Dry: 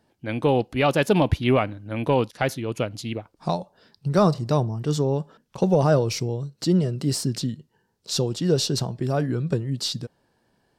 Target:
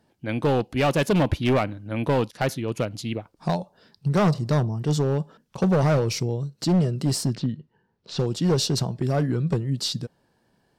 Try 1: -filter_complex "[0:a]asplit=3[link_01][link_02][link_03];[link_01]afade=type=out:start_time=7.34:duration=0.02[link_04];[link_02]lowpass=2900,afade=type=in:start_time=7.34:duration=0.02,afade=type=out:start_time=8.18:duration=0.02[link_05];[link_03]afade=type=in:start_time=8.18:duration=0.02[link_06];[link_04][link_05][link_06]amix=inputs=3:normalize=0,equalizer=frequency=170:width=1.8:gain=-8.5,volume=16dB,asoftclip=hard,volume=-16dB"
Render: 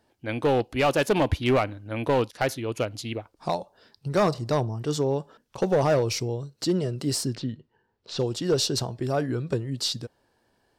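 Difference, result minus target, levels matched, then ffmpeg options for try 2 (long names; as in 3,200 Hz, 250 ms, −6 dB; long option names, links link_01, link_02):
125 Hz band −4.0 dB
-filter_complex "[0:a]asplit=3[link_01][link_02][link_03];[link_01]afade=type=out:start_time=7.34:duration=0.02[link_04];[link_02]lowpass=2900,afade=type=in:start_time=7.34:duration=0.02,afade=type=out:start_time=8.18:duration=0.02[link_05];[link_03]afade=type=in:start_time=8.18:duration=0.02[link_06];[link_04][link_05][link_06]amix=inputs=3:normalize=0,equalizer=frequency=170:width=1.8:gain=3,volume=16dB,asoftclip=hard,volume=-16dB"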